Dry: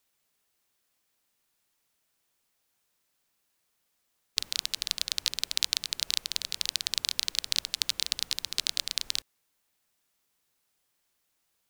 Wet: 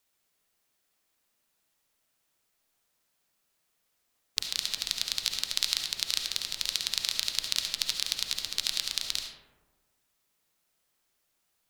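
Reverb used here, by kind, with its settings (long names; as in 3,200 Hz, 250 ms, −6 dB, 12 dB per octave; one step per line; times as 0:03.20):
comb and all-pass reverb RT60 1.3 s, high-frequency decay 0.35×, pre-delay 30 ms, DRR 3 dB
level −1 dB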